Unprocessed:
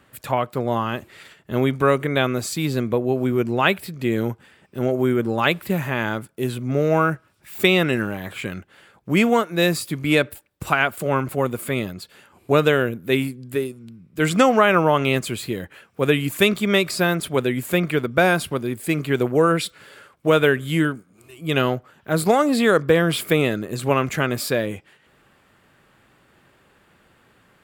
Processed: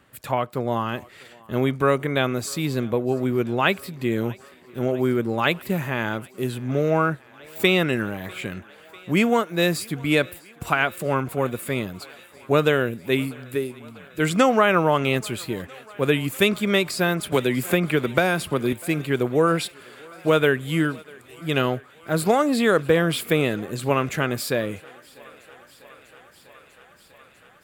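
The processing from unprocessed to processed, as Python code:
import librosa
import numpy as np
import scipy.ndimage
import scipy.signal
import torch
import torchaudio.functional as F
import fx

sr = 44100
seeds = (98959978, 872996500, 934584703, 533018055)

y = fx.high_shelf(x, sr, hz=7200.0, db=-9.5, at=(6.9, 7.56))
y = fx.echo_thinned(y, sr, ms=646, feedback_pct=84, hz=320.0, wet_db=-24.0)
y = fx.band_squash(y, sr, depth_pct=100, at=(17.32, 18.73))
y = y * librosa.db_to_amplitude(-2.0)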